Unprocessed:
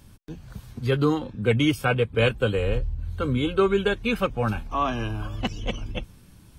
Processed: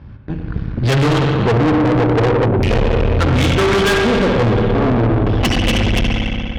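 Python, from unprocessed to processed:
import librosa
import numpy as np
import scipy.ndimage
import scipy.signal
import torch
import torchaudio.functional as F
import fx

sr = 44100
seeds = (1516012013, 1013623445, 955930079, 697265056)

p1 = fx.env_lowpass(x, sr, base_hz=1200.0, full_db=-18.5)
p2 = scipy.signal.sosfilt(scipy.signal.butter(2, 43.0, 'highpass', fs=sr, output='sos'), p1)
p3 = fx.filter_lfo_lowpass(p2, sr, shape='square', hz=0.38, low_hz=410.0, high_hz=5000.0, q=2.7)
p4 = fx.rev_spring(p3, sr, rt60_s=2.7, pass_ms=(59,), chirp_ms=80, drr_db=2.0)
p5 = fx.rider(p4, sr, range_db=4, speed_s=0.5)
p6 = p4 + (p5 * 10.0 ** (3.0 / 20.0))
p7 = fx.peak_eq(p6, sr, hz=1900.0, db=7.0, octaves=1.4)
p8 = fx.spec_erase(p7, sr, start_s=2.45, length_s=0.26, low_hz=440.0, high_hz=1800.0)
p9 = fx.low_shelf(p8, sr, hz=180.0, db=9.5)
p10 = p9 + fx.echo_feedback(p9, sr, ms=95, feedback_pct=46, wet_db=-12, dry=0)
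p11 = fx.tube_stage(p10, sr, drive_db=18.0, bias=0.8)
y = p11 * 10.0 ** (6.0 / 20.0)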